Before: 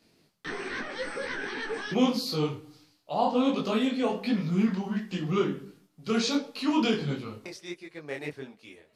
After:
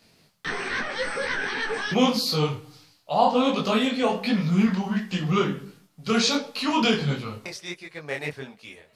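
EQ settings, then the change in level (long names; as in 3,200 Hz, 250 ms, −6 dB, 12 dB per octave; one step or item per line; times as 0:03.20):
parametric band 320 Hz −9 dB 0.85 octaves
+7.5 dB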